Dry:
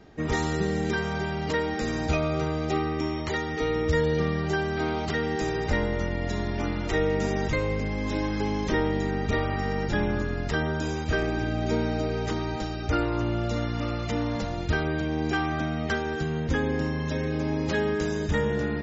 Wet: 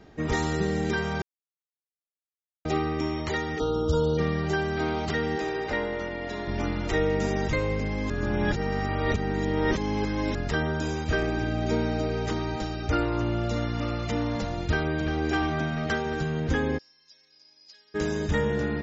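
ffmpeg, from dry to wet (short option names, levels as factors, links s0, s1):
-filter_complex "[0:a]asplit=3[s0][s1][s2];[s0]afade=t=out:st=3.58:d=0.02[s3];[s1]asuperstop=centerf=2100:order=20:qfactor=1.5,afade=t=in:st=3.58:d=0.02,afade=t=out:st=4.17:d=0.02[s4];[s2]afade=t=in:st=4.17:d=0.02[s5];[s3][s4][s5]amix=inputs=3:normalize=0,asettb=1/sr,asplit=3[s6][s7][s8];[s6]atrim=end=5.384[s9];[s7]atrim=start=5.38:end=6.48,asetpts=PTS-STARTPTS,afade=t=in:d=0.004:c=qsin,afade=t=out:st=1.096:d=0.004:c=qsin,acrossover=split=260 5300:gain=0.224 1 0.158[s10][s11][s12];[s10][s11][s12]amix=inputs=3:normalize=0[s13];[s8]atrim=start=6.476[s14];[s9][s13]acrossfade=d=0.004:c1=hsin:c2=qsin[s15];[s15][s14]acrossfade=d=0.004:c1=qsin:c2=hsin,asplit=2[s16][s17];[s17]afade=t=in:st=14.71:d=0.01,afade=t=out:st=15.15:d=0.01,aecho=0:1:350|700|1050|1400|1750|2100|2450|2800|3150|3500|3850|4200:0.501187|0.37589|0.281918|0.211438|0.158579|0.118934|0.0892006|0.0669004|0.0501753|0.0376315|0.0282236|0.0211677[s18];[s16][s18]amix=inputs=2:normalize=0,asplit=3[s19][s20][s21];[s19]afade=t=out:st=16.77:d=0.02[s22];[s20]bandpass=f=5000:t=q:w=13,afade=t=in:st=16.77:d=0.02,afade=t=out:st=17.94:d=0.02[s23];[s21]afade=t=in:st=17.94:d=0.02[s24];[s22][s23][s24]amix=inputs=3:normalize=0,asplit=5[s25][s26][s27][s28][s29];[s25]atrim=end=1.22,asetpts=PTS-STARTPTS,afade=t=out:st=1.216:d=0.004:c=hsin[s30];[s26]atrim=start=1.22:end=2.65,asetpts=PTS-STARTPTS,volume=0[s31];[s27]atrim=start=2.65:end=8.102,asetpts=PTS-STARTPTS,afade=t=in:d=0.004:c=hsin[s32];[s28]atrim=start=8.098:end=10.352,asetpts=PTS-STARTPTS,areverse[s33];[s29]atrim=start=10.348[s34];[s30][s31][s32]concat=n=3:v=0:a=1[s35];[s35][s33]acrossfade=d=0.004:c1=hsin:c2=hsin[s36];[s36][s34]acrossfade=d=0.004:c1=hsin:c2=hsin"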